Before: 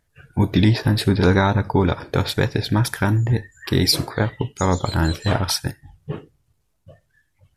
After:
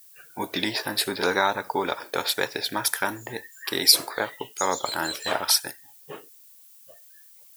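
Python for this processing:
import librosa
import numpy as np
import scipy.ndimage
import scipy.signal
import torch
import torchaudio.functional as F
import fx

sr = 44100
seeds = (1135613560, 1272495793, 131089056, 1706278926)

y = fx.high_shelf(x, sr, hz=7700.0, db=11.5)
y = fx.dmg_noise_colour(y, sr, seeds[0], colour='violet', level_db=-50.0)
y = scipy.signal.sosfilt(scipy.signal.butter(2, 520.0, 'highpass', fs=sr, output='sos'), y)
y = F.gain(torch.from_numpy(y), -1.5).numpy()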